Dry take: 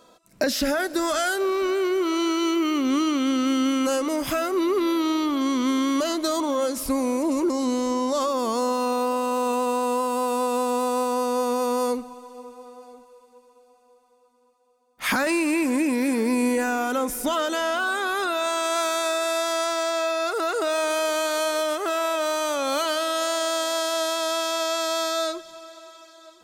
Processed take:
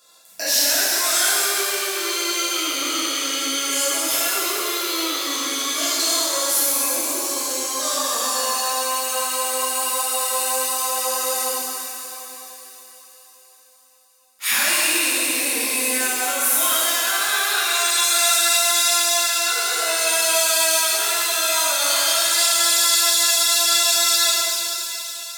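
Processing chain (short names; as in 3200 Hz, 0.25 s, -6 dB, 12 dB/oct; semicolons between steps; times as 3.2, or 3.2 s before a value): high shelf 9400 Hz -4.5 dB; speed mistake 24 fps film run at 25 fps; pre-emphasis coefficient 0.97; on a send: thin delay 0.289 s, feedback 68%, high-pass 2200 Hz, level -11 dB; on the sum: shimmer reverb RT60 2.4 s, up +7 st, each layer -8 dB, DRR -9.5 dB; gain +6.5 dB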